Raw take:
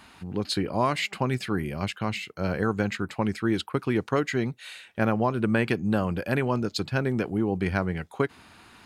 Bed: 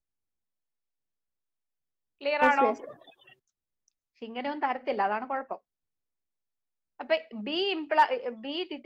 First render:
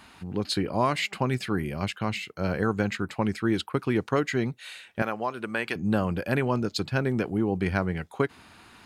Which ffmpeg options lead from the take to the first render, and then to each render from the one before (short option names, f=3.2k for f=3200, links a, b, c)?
-filter_complex "[0:a]asettb=1/sr,asplit=3[a][b][c];[a]atrim=end=5.024[d];[b]atrim=start=5.02:end=5.76,asetpts=PTS-STARTPTS,afade=t=in:d=0.004:c=qsin,afade=t=out:st=0.736:d=0.004:c=qsin,highpass=f=840:p=1[e];[c]atrim=start=5.756[f];[d][e]acrossfade=d=0.004:c1=hsin:c2=qsin[g];[g][f]acrossfade=d=0.004:c1=qsin:c2=hsin"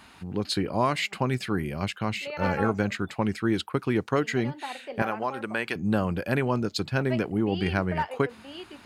-filter_complex "[1:a]volume=-8dB[a];[0:a][a]amix=inputs=2:normalize=0"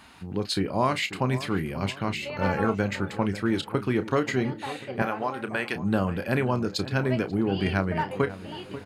-filter_complex "[0:a]asplit=2[a][b];[b]adelay=31,volume=-11dB[c];[a][c]amix=inputs=2:normalize=0,asplit=2[d][e];[e]adelay=538,lowpass=f=1.5k:p=1,volume=-14dB,asplit=2[f][g];[g]adelay=538,lowpass=f=1.5k:p=1,volume=0.52,asplit=2[h][i];[i]adelay=538,lowpass=f=1.5k:p=1,volume=0.52,asplit=2[j][k];[k]adelay=538,lowpass=f=1.5k:p=1,volume=0.52,asplit=2[l][m];[m]adelay=538,lowpass=f=1.5k:p=1,volume=0.52[n];[d][f][h][j][l][n]amix=inputs=6:normalize=0"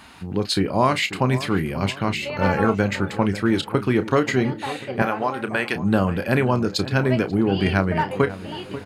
-af "volume=5.5dB"